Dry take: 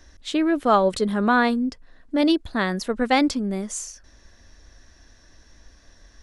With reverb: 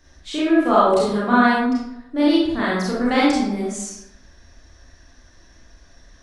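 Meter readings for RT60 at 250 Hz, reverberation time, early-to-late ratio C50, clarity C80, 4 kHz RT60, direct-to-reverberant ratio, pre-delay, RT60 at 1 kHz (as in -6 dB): 0.85 s, 0.85 s, -1.5 dB, 2.5 dB, 0.55 s, -8.0 dB, 28 ms, 0.85 s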